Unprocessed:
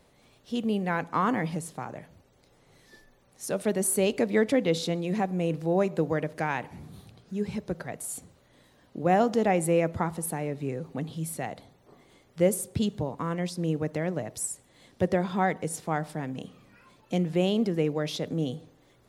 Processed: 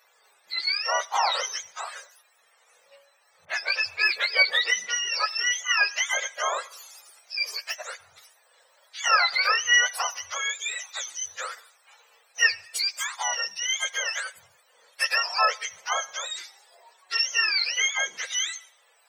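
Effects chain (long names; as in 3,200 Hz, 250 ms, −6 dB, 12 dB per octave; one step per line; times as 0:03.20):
frequency axis turned over on the octave scale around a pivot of 990 Hz
inverse Chebyshev high-pass filter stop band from 300 Hz, stop band 40 dB
0:03.45–0:05.72: all-pass dispersion highs, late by 45 ms, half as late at 3,000 Hz
level +6.5 dB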